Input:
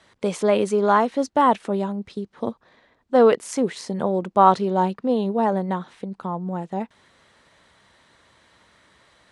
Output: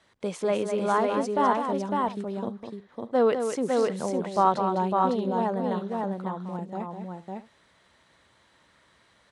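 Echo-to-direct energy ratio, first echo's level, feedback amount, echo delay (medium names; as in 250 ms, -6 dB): -1.5 dB, -7.5 dB, no regular repeats, 204 ms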